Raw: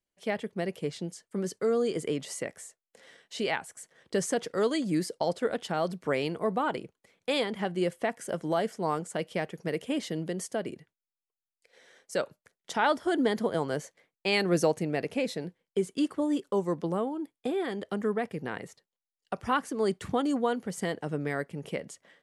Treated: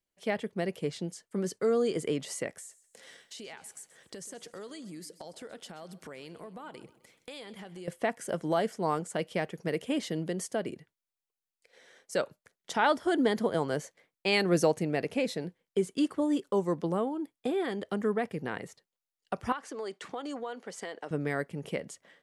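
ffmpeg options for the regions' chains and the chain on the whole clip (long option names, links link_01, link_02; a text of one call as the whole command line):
ffmpeg -i in.wav -filter_complex "[0:a]asettb=1/sr,asplit=3[link_01][link_02][link_03];[link_01]atrim=end=2.584[link_04];[link_02]atrim=start=2.58:end=7.88,asetpts=PTS-STARTPTS,afade=type=in:duration=0.004:curve=qsin,afade=type=out:start_time=5.296:duration=0.004:curve=qsin,highshelf=frequency=3900:gain=9,acompressor=threshold=-43dB:ratio=5:attack=3.2:release=140:knee=1:detection=peak,aecho=1:1:129|258|387|516:0.141|0.0593|0.0249|0.0105,atrim=end_sample=233730[link_05];[link_03]atrim=start=7.876[link_06];[link_04][link_05]acrossfade=duration=0.004:curve1=hsin:curve2=qsin[link_07];[link_07][link_06]acrossfade=duration=0.004:curve1=qsin:curve2=hsin,asettb=1/sr,asplit=3[link_08][link_09][link_10];[link_08]atrim=end=19.524[link_11];[link_09]atrim=start=19.52:end=21.11,asetpts=PTS-STARTPTS,afade=type=in:duration=0.004:curve=qsin,afade=type=out:start_time=1.586:duration=0.004:curve=qsin,highpass=450,lowpass=7000,acompressor=threshold=-33dB:ratio=5:attack=3.2:release=140:knee=1:detection=peak[link_12];[link_10]atrim=start=21.106[link_13];[link_11][link_12]acrossfade=duration=0.004:curve1=hsin:curve2=qsin[link_14];[link_14][link_13]acrossfade=duration=0.004:curve1=qsin:curve2=hsin" out.wav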